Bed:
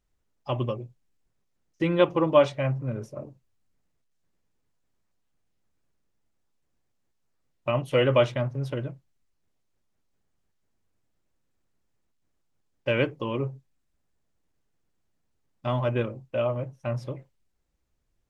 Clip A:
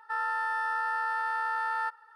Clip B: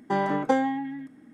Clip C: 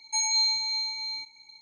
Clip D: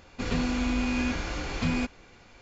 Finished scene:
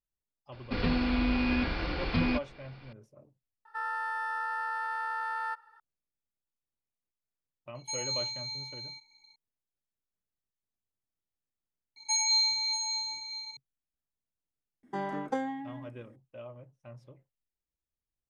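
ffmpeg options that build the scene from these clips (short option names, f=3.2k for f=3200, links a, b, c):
-filter_complex "[3:a]asplit=2[a][b];[0:a]volume=-19dB[c];[4:a]aresample=11025,aresample=44100[d];[b]aecho=1:1:638:0.335[e];[c]asplit=2[f][g];[f]atrim=end=11.964[h];[e]atrim=end=1.61,asetpts=PTS-STARTPTS,volume=-1.5dB[i];[g]atrim=start=13.566[j];[d]atrim=end=2.41,asetpts=PTS-STARTPTS,volume=-0.5dB,afade=t=in:d=0.004:c=hsin,afade=t=out:st=2.406:d=0.004:c=hsin,adelay=520[k];[1:a]atrim=end=2.15,asetpts=PTS-STARTPTS,volume=-3.5dB,afade=t=in:d=0.004:c=hsin,afade=t=out:st=2.146:d=0.004:c=hsin,adelay=160965S[l];[a]atrim=end=1.61,asetpts=PTS-STARTPTS,volume=-9.5dB,afade=t=in:d=0.004:c=hsin,afade=t=out:st=1.606:d=0.004:c=hsin,adelay=7750[m];[2:a]atrim=end=1.33,asetpts=PTS-STARTPTS,volume=-9.5dB,afade=t=in:d=0.004:c=hsin,afade=t=out:st=1.326:d=0.004:c=hsin,adelay=14830[n];[h][i]acrossfade=d=0.004:c1=hsin:c2=hsin[o];[o][j]acrossfade=d=0.004:c1=hsin:c2=hsin[p];[p][k][l][m][n]amix=inputs=5:normalize=0"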